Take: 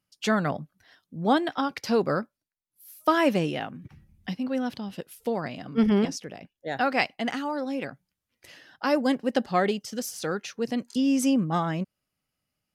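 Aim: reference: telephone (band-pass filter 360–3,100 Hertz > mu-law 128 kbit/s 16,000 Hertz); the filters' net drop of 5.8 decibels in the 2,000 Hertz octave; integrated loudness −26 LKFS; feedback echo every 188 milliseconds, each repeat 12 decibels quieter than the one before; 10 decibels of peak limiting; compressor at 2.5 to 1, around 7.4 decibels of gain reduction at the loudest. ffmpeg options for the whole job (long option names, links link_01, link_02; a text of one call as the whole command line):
ffmpeg -i in.wav -af "equalizer=frequency=2000:width_type=o:gain=-7,acompressor=threshold=-29dB:ratio=2.5,alimiter=level_in=2.5dB:limit=-24dB:level=0:latency=1,volume=-2.5dB,highpass=360,lowpass=3100,aecho=1:1:188|376|564:0.251|0.0628|0.0157,volume=14dB" -ar 16000 -c:a pcm_mulaw out.wav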